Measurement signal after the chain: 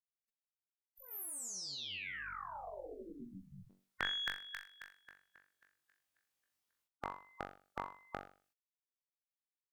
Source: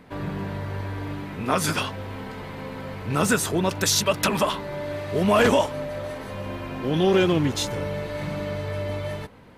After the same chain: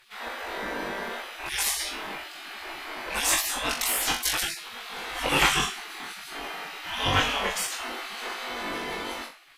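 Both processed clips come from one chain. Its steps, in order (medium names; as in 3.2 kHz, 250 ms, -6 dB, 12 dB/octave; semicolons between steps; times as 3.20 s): flutter echo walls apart 3.6 m, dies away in 0.38 s; Chebyshev shaper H 2 -26 dB, 4 -26 dB, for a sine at -2.5 dBFS; spectral gate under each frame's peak -20 dB weak; trim +4.5 dB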